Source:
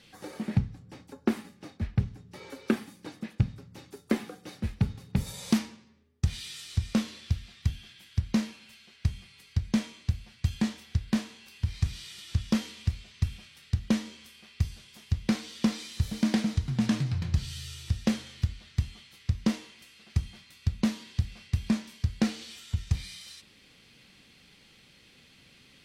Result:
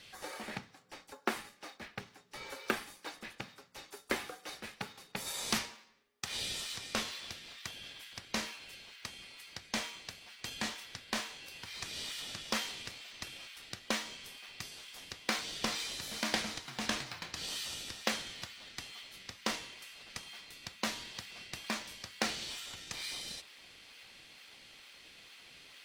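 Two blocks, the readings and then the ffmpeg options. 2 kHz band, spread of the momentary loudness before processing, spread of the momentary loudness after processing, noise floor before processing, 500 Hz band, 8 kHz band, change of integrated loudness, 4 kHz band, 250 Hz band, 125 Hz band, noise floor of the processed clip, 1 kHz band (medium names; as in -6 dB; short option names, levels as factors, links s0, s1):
+3.5 dB, 16 LU, 16 LU, -58 dBFS, -4.0 dB, +3.0 dB, -7.5 dB, +3.0 dB, -16.0 dB, -25.0 dB, -62 dBFS, +2.5 dB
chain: -filter_complex "[0:a]highpass=770,asplit=2[s0][s1];[s1]acrusher=samples=23:mix=1:aa=0.000001:lfo=1:lforange=36.8:lforate=2.2,volume=0.282[s2];[s0][s2]amix=inputs=2:normalize=0,volume=1.41"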